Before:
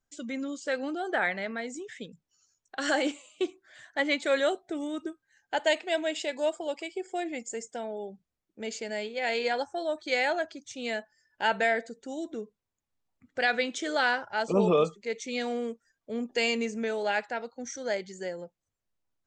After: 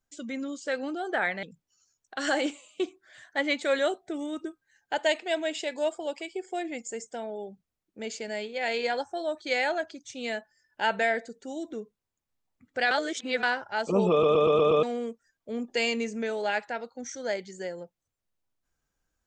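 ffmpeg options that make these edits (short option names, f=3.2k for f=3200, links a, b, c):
-filter_complex "[0:a]asplit=10[a][b][c][d][e][f][g][h][i][j];[a]atrim=end=1.432[k];[b]atrim=start=2.038:end=13.522[l];[c]atrim=start=13.518:end=14.042,asetpts=PTS-STARTPTS,areverse[m];[d]atrim=start=14.038:end=14.842[n];[e]atrim=start=14.718:end=14.842[o];[f]atrim=start=14.718:end=14.842[p];[g]atrim=start=14.718:end=14.842[q];[h]atrim=start=14.718:end=14.842[r];[i]atrim=start=14.718:end=14.842[s];[j]atrim=start=15.438[t];[k][l]acrossfade=d=0.004:c1=hsin:c2=hsin[u];[u][m]acrossfade=d=0.004:c1=hsin:c2=hsin[v];[v][n]acrossfade=d=0.004:c1=hsin:c2=hsin[w];[w][o]acrossfade=d=0.004:c1=hsin:c2=hsin[x];[x][p]acrossfade=d=0.004:c1=hsin:c2=hsin[y];[y][q]acrossfade=d=0.004:c1=hsin:c2=hsin[z];[z][r]acrossfade=d=0.004:c1=hsin:c2=hsin[aa];[aa][s]acrossfade=d=0.004:c1=hsin:c2=hsin[ab];[ab][t]acrossfade=d=0.004:c1=hsin:c2=hsin"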